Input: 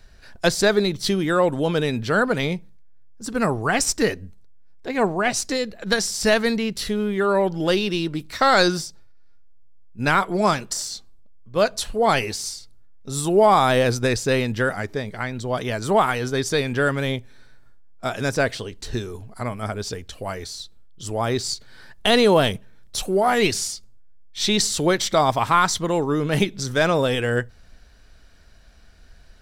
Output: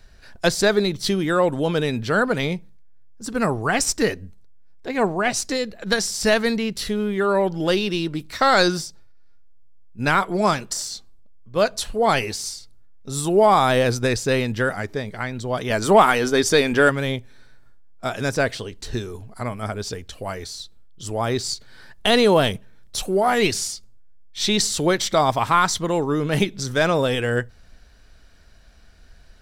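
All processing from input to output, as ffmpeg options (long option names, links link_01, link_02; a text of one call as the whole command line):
ffmpeg -i in.wav -filter_complex "[0:a]asettb=1/sr,asplit=3[link_01][link_02][link_03];[link_01]atrim=end=15.704[link_04];[link_02]atrim=start=15.7:end=16.9,asetpts=PTS-STARTPTS,afade=type=in:duration=0.004:curve=qsin,afade=type=out:start_time=1.196:duration=0.004:curve=qsin,equalizer=frequency=130:width=4:gain=-12.5,bandreject=frequency=4000:width=23,acontrast=44[link_05];[link_03]atrim=start=16.896[link_06];[link_04][link_05]acrossfade=duration=0.004:curve1=hsin:curve2=qsin[link_07];[link_07][link_06]acrossfade=duration=0.004:curve1=qsin:curve2=hsin" out.wav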